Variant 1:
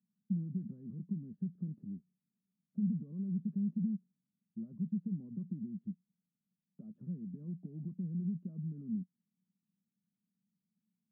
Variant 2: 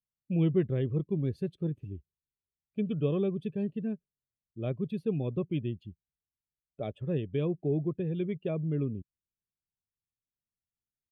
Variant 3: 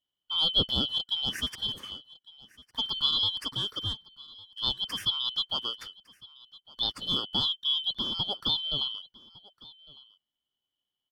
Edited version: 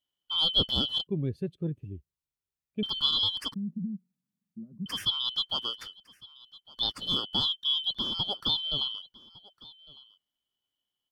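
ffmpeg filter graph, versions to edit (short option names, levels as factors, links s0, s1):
-filter_complex "[2:a]asplit=3[s0][s1][s2];[s0]atrim=end=1.072[s3];[1:a]atrim=start=1.068:end=2.832[s4];[s1]atrim=start=2.828:end=3.542[s5];[0:a]atrim=start=3.538:end=4.862[s6];[s2]atrim=start=4.858[s7];[s3][s4]acrossfade=d=0.004:c1=hsin:c2=hsin[s8];[s8][s5]acrossfade=d=0.004:c1=hsin:c2=hsin[s9];[s9][s6]acrossfade=d=0.004:c1=hsin:c2=hsin[s10];[s10][s7]acrossfade=d=0.004:c1=hsin:c2=hsin"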